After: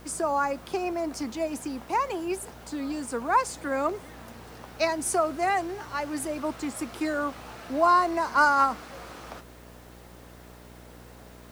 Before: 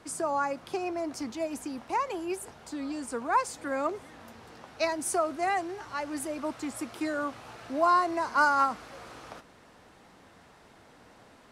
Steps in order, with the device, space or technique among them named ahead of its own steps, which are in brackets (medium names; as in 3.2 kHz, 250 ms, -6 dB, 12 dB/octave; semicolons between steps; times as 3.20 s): video cassette with head-switching buzz (mains buzz 60 Hz, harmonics 11, -53 dBFS -4 dB/octave; white noise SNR 31 dB); trim +3 dB